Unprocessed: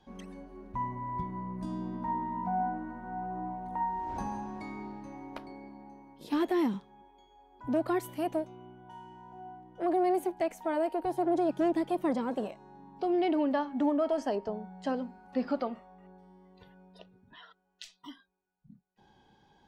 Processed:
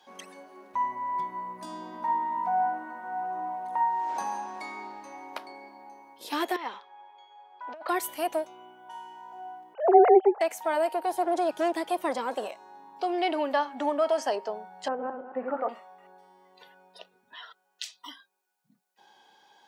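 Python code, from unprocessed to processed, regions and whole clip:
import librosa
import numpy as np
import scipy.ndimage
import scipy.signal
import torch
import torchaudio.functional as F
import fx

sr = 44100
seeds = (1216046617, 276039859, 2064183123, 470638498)

y = fx.chain(x, sr, fx.highpass(hz=600.0, slope=12),
    fx.over_compress(threshold_db=-38.0, ratio=-0.5),
    fx.air_absorb(metres=220.0), at=(6.56, 7.89))
y = fx.chain(y, sr, fx.sine_speech(),
    fx.highpass_res(hz=390.0, q=4.5), at=(9.74, 10.41))
y = fx.chain(y, sr, fx.reverse_delay_fb(ms=110, feedback_pct=48, wet_db=-3.0),
    fx.bessel_lowpass(hz=1200.0, order=6), at=(14.88, 15.69))
y = scipy.signal.sosfilt(scipy.signal.butter(2, 610.0, 'highpass', fs=sr, output='sos'), y)
y = fx.high_shelf(y, sr, hz=4600.0, db=6.0)
y = y * 10.0 ** (7.0 / 20.0)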